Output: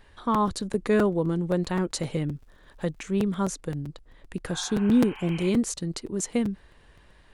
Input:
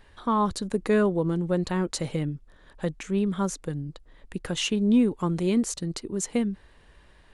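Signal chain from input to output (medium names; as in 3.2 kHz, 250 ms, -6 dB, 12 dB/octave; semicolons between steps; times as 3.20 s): 2.34–3.16 s: crackle 220 per s -58 dBFS; 4.56–5.47 s: spectral replace 720–3200 Hz both; crackling interface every 0.13 s, samples 256, repeat, from 0.34 s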